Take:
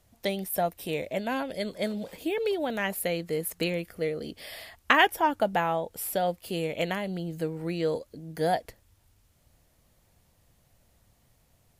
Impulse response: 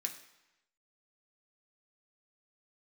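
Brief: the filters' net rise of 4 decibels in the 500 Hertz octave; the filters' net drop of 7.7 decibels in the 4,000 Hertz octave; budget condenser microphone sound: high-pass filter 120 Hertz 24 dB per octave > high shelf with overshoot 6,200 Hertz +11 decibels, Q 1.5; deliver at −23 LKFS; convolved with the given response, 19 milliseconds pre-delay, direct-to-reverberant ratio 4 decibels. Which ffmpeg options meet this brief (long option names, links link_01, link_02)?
-filter_complex "[0:a]equalizer=frequency=500:width_type=o:gain=5,equalizer=frequency=4000:width_type=o:gain=-9,asplit=2[link_01][link_02];[1:a]atrim=start_sample=2205,adelay=19[link_03];[link_02][link_03]afir=irnorm=-1:irlink=0,volume=-3.5dB[link_04];[link_01][link_04]amix=inputs=2:normalize=0,highpass=frequency=120:width=0.5412,highpass=frequency=120:width=1.3066,highshelf=frequency=6200:width_type=q:width=1.5:gain=11,volume=1.5dB"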